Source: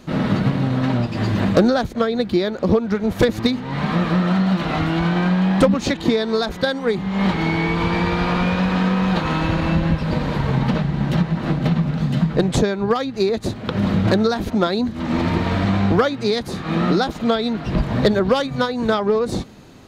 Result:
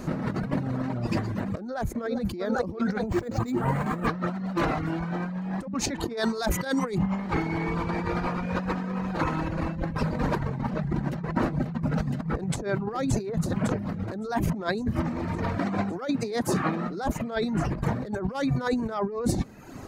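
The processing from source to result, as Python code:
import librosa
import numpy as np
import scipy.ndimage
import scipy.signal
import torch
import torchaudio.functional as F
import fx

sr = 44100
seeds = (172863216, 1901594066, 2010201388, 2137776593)

y = fx.echo_throw(x, sr, start_s=1.64, length_s=0.77, ms=400, feedback_pct=75, wet_db=-12.0)
y = fx.resample_linear(y, sr, factor=4, at=(3.06, 4.07))
y = fx.high_shelf(y, sr, hz=2700.0, db=10.0, at=(6.17, 6.98))
y = fx.echo_throw(y, sr, start_s=11.6, length_s=1.04, ms=560, feedback_pct=85, wet_db=-11.5)
y = fx.highpass(y, sr, hz=170.0, slope=12, at=(15.58, 16.88))
y = fx.dereverb_blind(y, sr, rt60_s=0.74)
y = fx.peak_eq(y, sr, hz=3400.0, db=-12.0, octaves=0.9)
y = fx.over_compress(y, sr, threshold_db=-29.0, ratio=-1.0)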